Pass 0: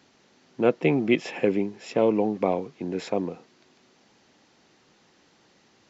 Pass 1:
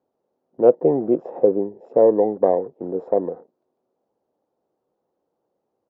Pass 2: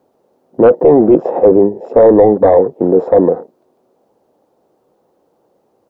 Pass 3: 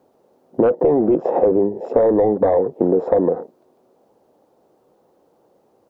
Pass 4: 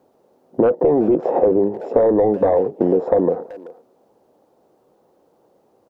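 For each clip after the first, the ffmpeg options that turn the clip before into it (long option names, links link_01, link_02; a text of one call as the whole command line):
ffmpeg -i in.wav -af "firequalizer=gain_entry='entry(210,0);entry(500,13);entry(1900,-16)':delay=0.05:min_phase=1,afwtdn=0.00891,volume=-3dB" out.wav
ffmpeg -i in.wav -af "apsyclip=18.5dB,volume=-1.5dB" out.wav
ffmpeg -i in.wav -af "acompressor=threshold=-12dB:ratio=12" out.wav
ffmpeg -i in.wav -filter_complex "[0:a]asplit=2[link_01][link_02];[link_02]adelay=380,highpass=300,lowpass=3400,asoftclip=type=hard:threshold=-12dB,volume=-18dB[link_03];[link_01][link_03]amix=inputs=2:normalize=0" out.wav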